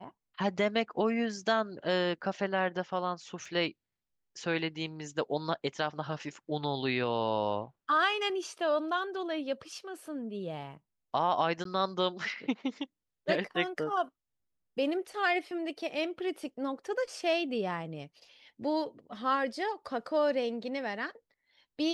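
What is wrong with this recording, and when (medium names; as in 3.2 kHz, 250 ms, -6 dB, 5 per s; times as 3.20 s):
3.45 s: dropout 3.6 ms
11.64–11.65 s: dropout 13 ms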